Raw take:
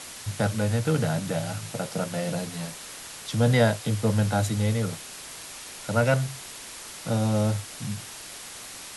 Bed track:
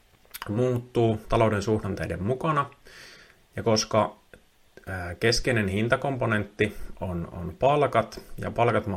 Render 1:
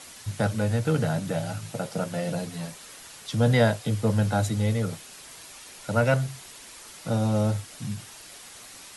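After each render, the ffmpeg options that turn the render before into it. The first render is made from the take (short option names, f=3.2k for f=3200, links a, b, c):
-af "afftdn=nr=6:nf=-41"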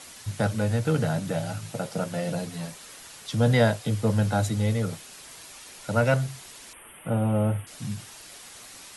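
-filter_complex "[0:a]asettb=1/sr,asplit=3[a][b][c];[a]atrim=end=6.734[d];[b]atrim=start=6.73:end=7.67,asetpts=PTS-STARTPTS,afade=t=in:d=0.004:c=qsin,afade=t=out:st=0.936:d=0.004:c=qsin,asuperstop=centerf=5400:order=12:qfactor=1[e];[c]atrim=start=7.666[f];[d][e]acrossfade=d=0.004:c1=hsin:c2=qsin[g];[g][f]acrossfade=d=0.004:c1=qsin:c2=hsin"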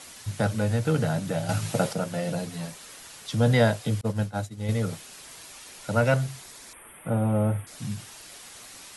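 -filter_complex "[0:a]asettb=1/sr,asplit=3[a][b][c];[a]atrim=end=4.014[d];[b]atrim=start=4.01:end=4.69,asetpts=PTS-STARTPTS,afade=t=in:d=0.004:c=qsin,afade=t=out:st=0.676:d=0.004:c=qsin,agate=range=-33dB:threshold=-18dB:ratio=3:release=100:detection=peak[e];[c]atrim=start=4.686[f];[d][e]acrossfade=d=0.004:c1=hsin:c2=qsin[g];[g][f]acrossfade=d=0.004:c1=qsin:c2=hsin,asettb=1/sr,asplit=3[h][i][j];[h]atrim=end=6.424[k];[i]atrim=start=6.42:end=7.76,asetpts=PTS-STARTPTS,afade=t=in:d=0.004:c=qsin,afade=t=out:st=1.336:d=0.004:c=qsin,equalizer=f=2.9k:t=o:w=0.23:g=-8.5[l];[j]atrim=start=7.756[m];[k][l]acrossfade=d=0.004:c1=hsin:c2=qsin[n];[n][m]acrossfade=d=0.004:c1=qsin:c2=hsin,asplit=3[o][p][q];[o]atrim=end=1.492[r];[p]atrim=start=1.488:end=1.932,asetpts=PTS-STARTPTS,volume=7dB[s];[q]atrim=start=1.928[t];[r][s]acrossfade=d=0.004:c1=hsin:c2=hsin[u];[u][t]acrossfade=d=0.004:c1=hsin:c2=hsin"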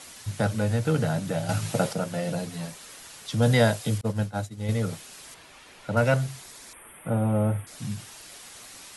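-filter_complex "[0:a]asettb=1/sr,asplit=3[a][b][c];[a]atrim=end=3.424[d];[b]atrim=start=3.42:end=3.98,asetpts=PTS-STARTPTS,afade=t=in:d=0.004:c=qsin,afade=t=out:st=0.556:d=0.004:c=qsin,highshelf=f=4.8k:g=6.5[e];[c]atrim=start=3.976[f];[d][e]acrossfade=d=0.004:c1=hsin:c2=qsin[g];[g][f]acrossfade=d=0.004:c1=qsin:c2=hsin,asettb=1/sr,asplit=3[h][i][j];[h]atrim=end=5.344[k];[i]atrim=start=5.34:end=5.97,asetpts=PTS-STARTPTS,afade=t=in:d=0.004:c=qsin,afade=t=out:st=0.626:d=0.004:c=qsin,acrossover=split=3600[l][m];[m]acompressor=threshold=-57dB:ratio=4:attack=1:release=60[n];[l][n]amix=inputs=2:normalize=0[o];[j]atrim=start=5.966[p];[k][o]acrossfade=d=0.004:c1=hsin:c2=qsin[q];[q][p]acrossfade=d=0.004:c1=qsin:c2=hsin"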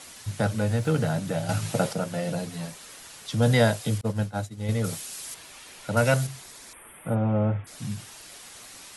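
-filter_complex "[0:a]asettb=1/sr,asplit=3[a][b][c];[a]atrim=end=0.704[d];[b]atrim=start=0.7:end=1.19,asetpts=PTS-STARTPTS,afade=t=in:d=0.004:c=qsin,afade=t=out:st=0.486:d=0.004:c=qsin,aeval=exprs='val(0)*gte(abs(val(0)),0.00299)':c=same[e];[c]atrim=start=1.186[f];[d][e]acrossfade=d=0.004:c1=hsin:c2=qsin[g];[g][f]acrossfade=d=0.004:c1=qsin:c2=hsin,asettb=1/sr,asplit=3[h][i][j];[h]atrim=end=4.844[k];[i]atrim=start=4.84:end=6.27,asetpts=PTS-STARTPTS,afade=t=in:d=0.004:c=qsin,afade=t=out:st=1.426:d=0.004:c=qsin,highshelf=f=4.4k:g=11[l];[j]atrim=start=6.266[m];[k][l]acrossfade=d=0.004:c1=hsin:c2=qsin[n];[n][m]acrossfade=d=0.004:c1=qsin:c2=hsin,asplit=3[o][p][q];[o]afade=t=out:st=7.14:d=0.02[r];[p]lowpass=f=3.4k:w=0.5412,lowpass=f=3.4k:w=1.3066,afade=t=in:st=7.14:d=0.02,afade=t=out:st=7.64:d=0.02[s];[q]afade=t=in:st=7.64:d=0.02[t];[r][s][t]amix=inputs=3:normalize=0"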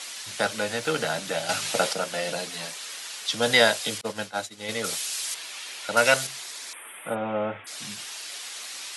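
-af "highpass=340,equalizer=f=3.7k:w=0.38:g=10.5"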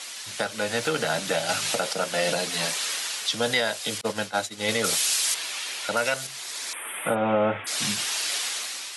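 -af "dynaudnorm=f=170:g=7:m=10.5dB,alimiter=limit=-13dB:level=0:latency=1:release=453"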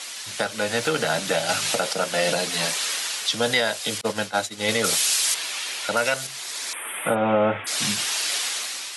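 -af "volume=2.5dB"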